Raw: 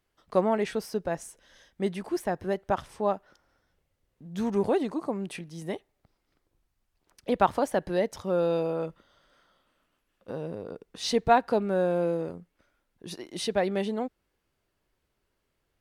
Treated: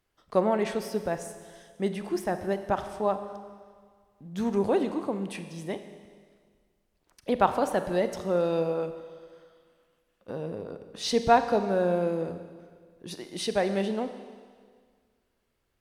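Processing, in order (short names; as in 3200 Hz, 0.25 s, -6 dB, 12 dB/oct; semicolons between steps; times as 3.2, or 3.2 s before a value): Schroeder reverb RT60 1.8 s, combs from 30 ms, DRR 9 dB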